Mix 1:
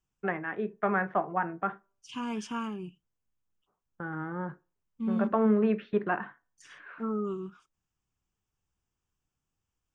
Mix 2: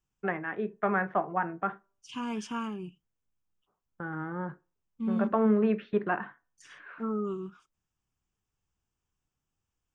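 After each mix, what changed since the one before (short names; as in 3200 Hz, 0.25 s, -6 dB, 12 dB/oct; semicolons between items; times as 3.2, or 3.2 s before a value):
none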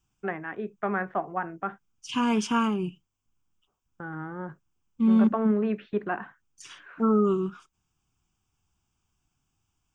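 second voice +10.0 dB; reverb: off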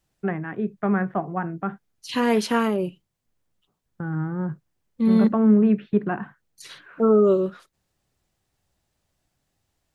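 first voice: add bell 140 Hz +14 dB 2.1 oct; second voice: remove fixed phaser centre 2800 Hz, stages 8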